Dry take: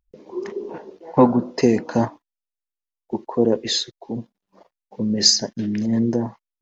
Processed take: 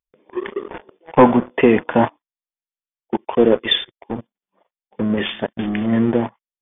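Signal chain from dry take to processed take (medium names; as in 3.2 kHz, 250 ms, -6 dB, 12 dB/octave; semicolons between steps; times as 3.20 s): tilt EQ +2.5 dB/octave; waveshaping leveller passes 3; brick-wall FIR low-pass 3.6 kHz; trim -3 dB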